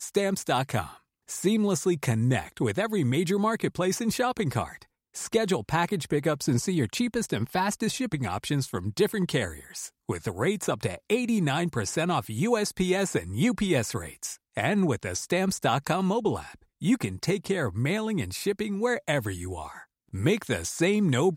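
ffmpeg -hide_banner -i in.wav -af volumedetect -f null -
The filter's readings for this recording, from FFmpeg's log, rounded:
mean_volume: -27.3 dB
max_volume: -11.3 dB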